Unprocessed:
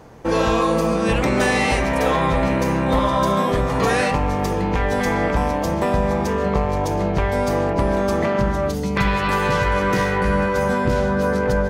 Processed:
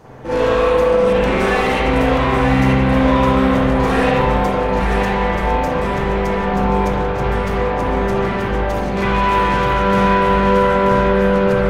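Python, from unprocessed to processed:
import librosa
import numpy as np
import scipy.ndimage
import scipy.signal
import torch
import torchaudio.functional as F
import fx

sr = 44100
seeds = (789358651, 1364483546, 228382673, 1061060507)

y = 10.0 ** (-21.5 / 20.0) * np.tanh(x / 10.0 ** (-21.5 / 20.0))
y = y + 10.0 ** (-5.5 / 20.0) * np.pad(y, (int(932 * sr / 1000.0), 0))[:len(y)]
y = fx.rev_spring(y, sr, rt60_s=1.1, pass_ms=(38, 46), chirp_ms=45, drr_db=-8.5)
y = F.gain(torch.from_numpy(y), -2.0).numpy()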